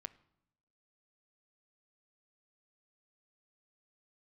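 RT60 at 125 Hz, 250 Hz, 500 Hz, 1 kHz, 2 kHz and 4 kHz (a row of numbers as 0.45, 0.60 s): 1.0, 1.0, 0.85, 0.80, 0.65, 0.70 s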